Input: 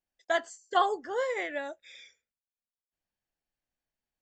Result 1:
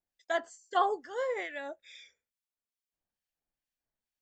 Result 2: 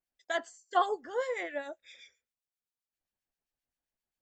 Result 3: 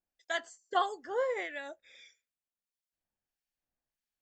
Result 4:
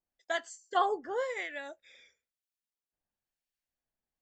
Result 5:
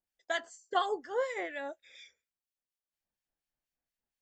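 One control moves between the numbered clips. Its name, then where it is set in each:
harmonic tremolo, rate: 2.3, 7.6, 1.6, 1, 4.2 Hz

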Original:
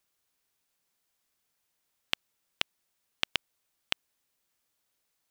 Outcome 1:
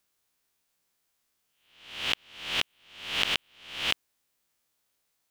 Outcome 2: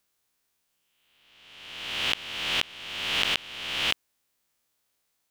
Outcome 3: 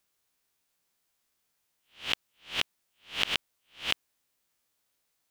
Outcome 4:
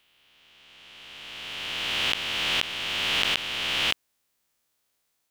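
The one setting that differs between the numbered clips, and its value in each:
spectral swells, rising 60 dB in: 0.64, 1.4, 0.31, 2.95 s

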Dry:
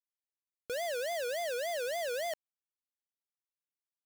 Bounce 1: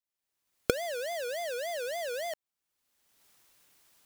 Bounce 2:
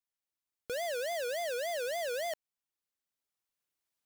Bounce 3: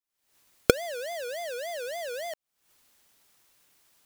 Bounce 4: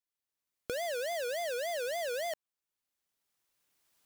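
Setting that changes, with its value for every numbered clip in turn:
recorder AGC, rising by: 34, 5.2, 85, 14 dB/s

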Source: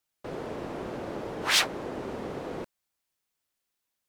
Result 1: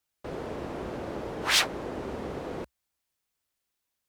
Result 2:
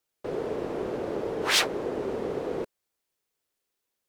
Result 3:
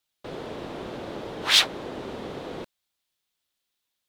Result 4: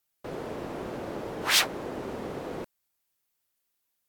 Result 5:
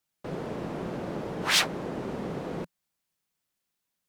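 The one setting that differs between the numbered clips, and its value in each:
bell, frequency: 61, 430, 3600, 16000, 170 Hz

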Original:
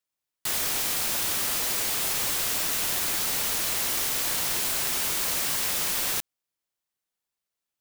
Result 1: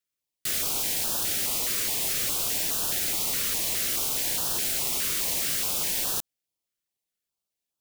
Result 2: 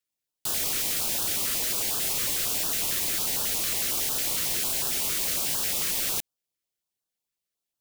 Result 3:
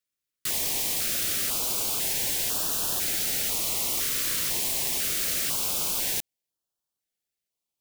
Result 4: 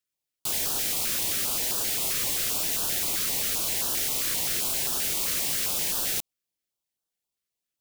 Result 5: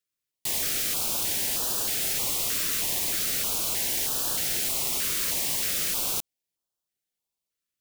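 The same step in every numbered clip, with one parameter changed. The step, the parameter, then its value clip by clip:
stepped notch, rate: 4.8, 11, 2, 7.6, 3.2 Hz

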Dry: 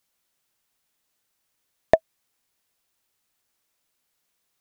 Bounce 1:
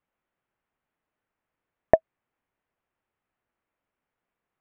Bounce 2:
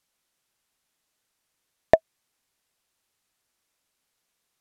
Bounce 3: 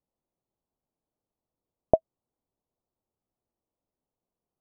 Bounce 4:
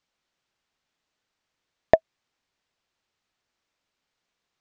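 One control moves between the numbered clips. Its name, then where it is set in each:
Bessel low-pass, frequency: 1600, 12000, 590, 4500 Hz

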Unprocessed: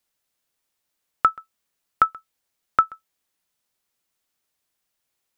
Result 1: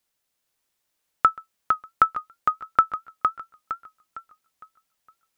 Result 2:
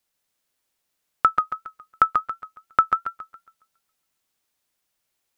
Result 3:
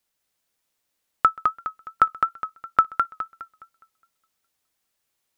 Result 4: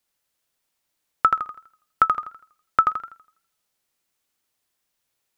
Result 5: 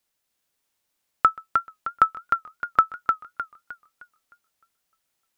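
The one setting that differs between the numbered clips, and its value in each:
warbling echo, time: 459, 138, 207, 82, 306 ms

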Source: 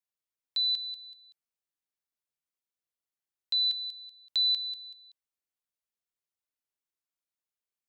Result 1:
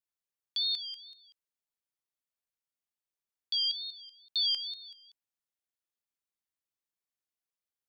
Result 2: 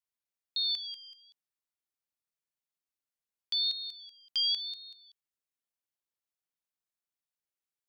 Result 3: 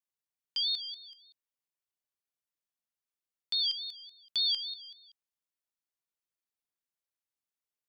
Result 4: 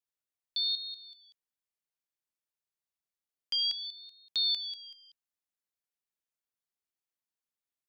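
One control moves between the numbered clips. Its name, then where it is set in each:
ring modulator with a swept carrier, at: 2.2, 0.93, 3.5, 0.59 Hz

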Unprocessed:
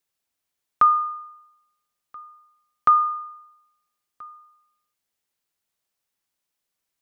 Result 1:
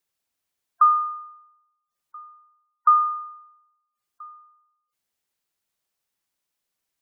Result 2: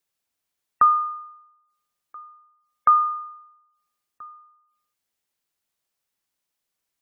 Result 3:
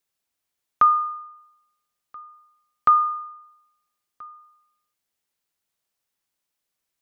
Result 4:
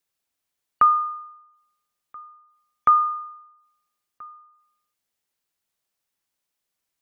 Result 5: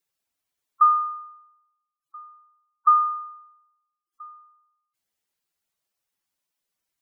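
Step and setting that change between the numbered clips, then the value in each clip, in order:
spectral gate, under each frame's peak: -20, -35, -60, -45, -10 dB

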